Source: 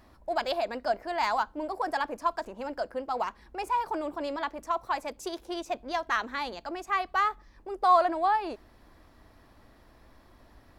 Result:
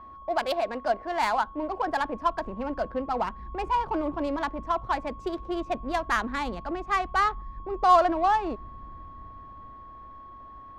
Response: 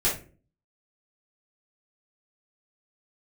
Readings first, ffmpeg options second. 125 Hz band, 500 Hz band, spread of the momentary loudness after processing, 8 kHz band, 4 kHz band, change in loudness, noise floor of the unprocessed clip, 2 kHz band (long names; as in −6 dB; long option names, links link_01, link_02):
can't be measured, +3.0 dB, 21 LU, +1.0 dB, +0.5 dB, +2.5 dB, −58 dBFS, +2.0 dB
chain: -filter_complex "[0:a]acrossover=split=200[link_01][link_02];[link_01]dynaudnorm=framelen=310:gausssize=13:maxgain=14dB[link_03];[link_03][link_02]amix=inputs=2:normalize=0,aeval=exprs='val(0)+0.00631*sin(2*PI*1100*n/s)':channel_layout=same,adynamicsmooth=sensitivity=3.5:basefreq=1800,volume=2.5dB"